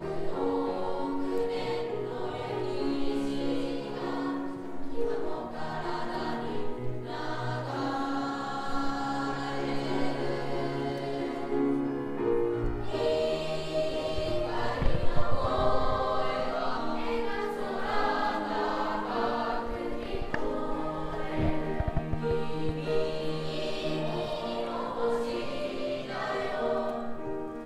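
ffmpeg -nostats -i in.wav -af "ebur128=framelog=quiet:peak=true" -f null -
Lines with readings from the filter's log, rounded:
Integrated loudness:
  I:         -31.9 LUFS
  Threshold: -41.9 LUFS
Loudness range:
  LRA:         3.3 LU
  Threshold: -51.9 LUFS
  LRA low:   -33.7 LUFS
  LRA high:  -30.4 LUFS
True peak:
  Peak:       -9.6 dBFS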